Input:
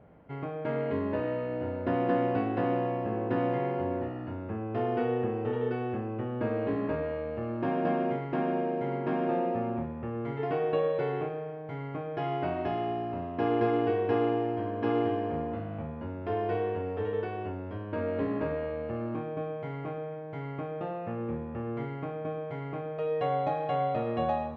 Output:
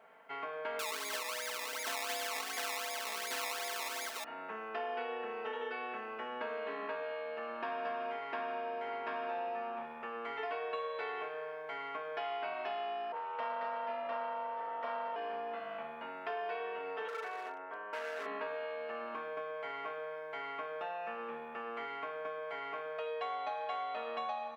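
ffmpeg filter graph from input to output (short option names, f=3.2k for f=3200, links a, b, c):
-filter_complex "[0:a]asettb=1/sr,asplit=3[a][b][c];[a]atrim=end=0.794[d];[b]atrim=start=0.79:end=4.24,asetpts=PTS-STARTPTS,afade=t=in:d=0.004:c=qsin,afade=t=out:st=3.446:d=0.004:c=qsin,aeval=exprs='val(0)+0.0141*sin(2*PI*2100*n/s)':c=same,acrusher=samples=20:mix=1:aa=0.000001:lfo=1:lforange=20:lforate=2.7,lowshelf=f=100:g=-10[e];[c]atrim=start=4.236[f];[d][e]acrossfade=d=0.004:c1=hsin:c2=qsin[g];[g][f]acrossfade=d=0.004:c1=qsin:c2=hsin,asettb=1/sr,asplit=3[h][i][j];[h]atrim=end=13.124[k];[i]atrim=start=13.12:end=15.16,asetpts=PTS-STARTPTS,afade=t=in:d=0.004:c=qsin,afade=t=out:st=2.036:d=0.004:c=qsin,aeval=exprs='val(0)*sin(2*PI*220*n/s)':c=same,asplit=2[l][m];[m]adelay=34,volume=-4dB[n];[l][n]amix=inputs=2:normalize=0,atrim=end_sample=89964,adynamicequalizer=threshold=0.00501:dfrequency=1900:dqfactor=0.7:tfrequency=1900:tqfactor=0.7:attack=5:release=100:ratio=0.375:range=3:mode=cutabove:tftype=highshelf[o];[j]atrim=start=15.156[p];[k][o]acrossfade=d=0.004:c1=hsin:c2=qsin[q];[q][p]acrossfade=d=0.004:c1=qsin:c2=hsin,asettb=1/sr,asplit=3[r][s][t];[r]atrim=end=17.084[u];[s]atrim=start=17.08:end=18.26,asetpts=PTS-STARTPTS,afade=t=in:d=0.004:c=qsin,afade=t=out:st=1.176:d=0.004:c=qsin,acrossover=split=280 2100:gain=0.178 1 0.0891[v][w][x];[v][w][x]amix=inputs=3:normalize=0,asoftclip=type=hard:threshold=-33dB[y];[t]atrim=start=18.256[z];[u][y]acrossfade=d=0.004:c1=hsin:c2=qsin[aa];[aa][z]acrossfade=d=0.004:c1=qsin:c2=hsin,highpass=1.1k,aecho=1:1:4.5:0.66,acompressor=threshold=-45dB:ratio=3,volume=7dB"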